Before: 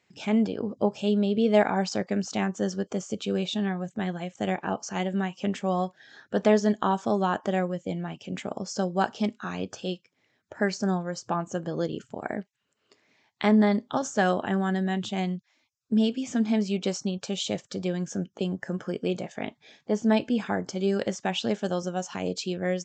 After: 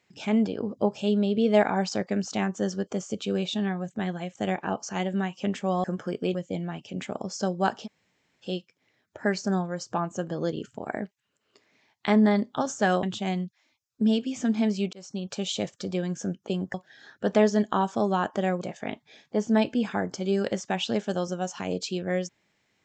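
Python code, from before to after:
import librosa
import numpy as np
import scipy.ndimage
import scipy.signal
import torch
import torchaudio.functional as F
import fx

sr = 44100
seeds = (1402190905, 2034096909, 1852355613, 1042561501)

y = fx.edit(x, sr, fx.swap(start_s=5.84, length_s=1.87, other_s=18.65, other_length_s=0.51),
    fx.room_tone_fill(start_s=9.21, length_s=0.59, crossfade_s=0.06),
    fx.cut(start_s=14.39, length_s=0.55),
    fx.fade_in_span(start_s=16.84, length_s=0.39), tone=tone)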